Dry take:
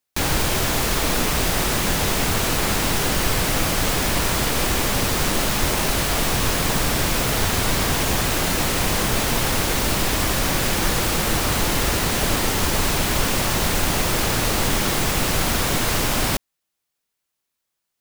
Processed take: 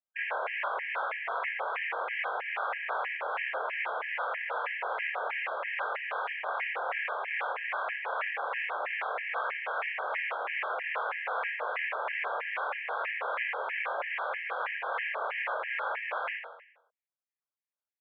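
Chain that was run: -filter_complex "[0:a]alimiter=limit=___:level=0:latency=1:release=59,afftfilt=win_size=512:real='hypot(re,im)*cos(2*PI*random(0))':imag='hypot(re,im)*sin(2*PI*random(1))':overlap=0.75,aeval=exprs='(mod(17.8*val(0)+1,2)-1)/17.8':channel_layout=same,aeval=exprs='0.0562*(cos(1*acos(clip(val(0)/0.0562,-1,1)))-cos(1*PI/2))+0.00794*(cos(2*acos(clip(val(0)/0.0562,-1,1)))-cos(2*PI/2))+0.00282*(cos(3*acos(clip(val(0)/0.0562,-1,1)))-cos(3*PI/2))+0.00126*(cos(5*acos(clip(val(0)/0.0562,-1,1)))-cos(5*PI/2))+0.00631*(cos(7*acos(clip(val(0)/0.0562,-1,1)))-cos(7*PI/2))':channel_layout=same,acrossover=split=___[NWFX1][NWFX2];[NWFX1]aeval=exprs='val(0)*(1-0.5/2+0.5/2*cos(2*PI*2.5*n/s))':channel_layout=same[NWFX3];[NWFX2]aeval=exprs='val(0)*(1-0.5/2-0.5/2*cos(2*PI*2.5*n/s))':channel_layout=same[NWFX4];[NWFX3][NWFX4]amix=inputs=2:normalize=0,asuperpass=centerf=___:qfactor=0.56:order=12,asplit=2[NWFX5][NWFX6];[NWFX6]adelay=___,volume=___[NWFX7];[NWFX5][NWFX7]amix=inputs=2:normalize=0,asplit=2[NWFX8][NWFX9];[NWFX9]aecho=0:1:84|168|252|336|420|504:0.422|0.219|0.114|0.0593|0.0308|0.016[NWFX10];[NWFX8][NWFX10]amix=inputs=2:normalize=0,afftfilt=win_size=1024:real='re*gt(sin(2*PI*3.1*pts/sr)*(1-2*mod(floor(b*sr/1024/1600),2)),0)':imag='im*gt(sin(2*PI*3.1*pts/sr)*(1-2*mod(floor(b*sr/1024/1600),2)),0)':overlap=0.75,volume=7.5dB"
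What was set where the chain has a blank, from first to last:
-11dB, 870, 1100, 25, -2.5dB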